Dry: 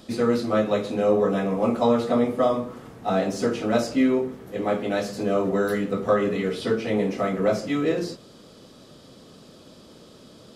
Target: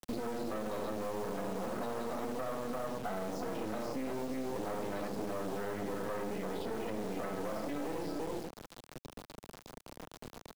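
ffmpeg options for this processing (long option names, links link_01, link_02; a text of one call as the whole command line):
ffmpeg -i in.wav -filter_complex "[0:a]asettb=1/sr,asplit=3[link_01][link_02][link_03];[link_01]atrim=end=1.644[link_04];[link_02]atrim=start=1.64:end=3.73,asetpts=PTS-STARTPTS,afade=type=in:duration=0.004:curve=qsin,afade=type=out:start_time=2.086:duration=0.004:curve=qsin,bandreject=frequency=60:width_type=h:width=6,bandreject=frequency=120:width_type=h:width=6,bandreject=frequency=180:width_type=h:width=6,bandreject=frequency=240:width_type=h:width=6,bandreject=frequency=300:width_type=h:width=6,bandreject=frequency=360:width_type=h:width=6,bandreject=frequency=420:width_type=h:width=6,bandreject=frequency=480:width_type=h:width=6,bandreject=frequency=540:width_type=h:width=6,bandreject=frequency=600:width_type=h:width=6[link_05];[link_03]atrim=start=3.726[link_06];[link_04][link_05]acrossfade=duration=0.004:curve1=hsin:curve2=qsin[link_07];[link_07][link_06]acrossfade=duration=0.004:curve1=qsin:curve2=hsin,aecho=1:1:41|47|79|342:0.211|0.224|0.422|0.376,afftdn=noise_reduction=13:noise_floor=-36,alimiter=level_in=4.5dB:limit=-24dB:level=0:latency=1:release=102,volume=-4.5dB,equalizer=frequency=150:width_type=o:width=0.72:gain=-2.5,acrusher=bits=5:dc=4:mix=0:aa=0.000001,acrossover=split=160|1400[link_08][link_09][link_10];[link_08]acompressor=threshold=-53dB:ratio=4[link_11];[link_09]acompressor=threshold=-43dB:ratio=4[link_12];[link_10]acompressor=threshold=-58dB:ratio=4[link_13];[link_11][link_12][link_13]amix=inputs=3:normalize=0,volume=7.5dB" out.wav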